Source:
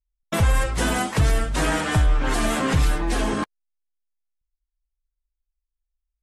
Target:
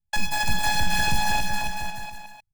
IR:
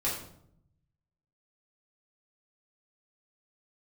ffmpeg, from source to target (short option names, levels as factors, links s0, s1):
-af "aecho=1:1:660|1221|1698|2103|2448:0.631|0.398|0.251|0.158|0.1,afftfilt=real='hypot(re,im)*cos(PI*b)':imag='0':win_size=512:overlap=0.75,asetrate=108045,aresample=44100,volume=1.19"